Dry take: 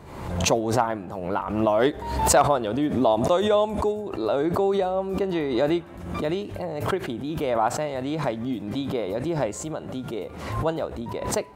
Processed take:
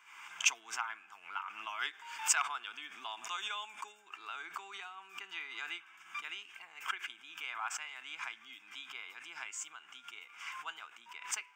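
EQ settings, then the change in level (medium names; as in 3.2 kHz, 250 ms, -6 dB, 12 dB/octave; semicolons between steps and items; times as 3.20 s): resonant high-pass 1.9 kHz, resonance Q 5.4; static phaser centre 2.8 kHz, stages 8; -5.5 dB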